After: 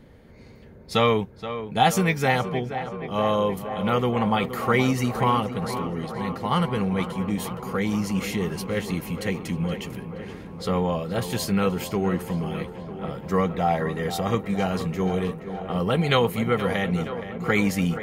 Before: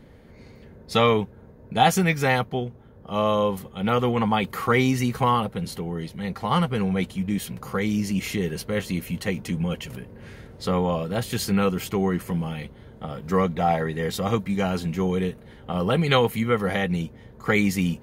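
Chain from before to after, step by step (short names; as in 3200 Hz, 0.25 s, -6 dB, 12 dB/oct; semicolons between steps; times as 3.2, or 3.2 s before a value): tape echo 0.473 s, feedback 87%, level -10 dB, low-pass 2300 Hz; gain -1 dB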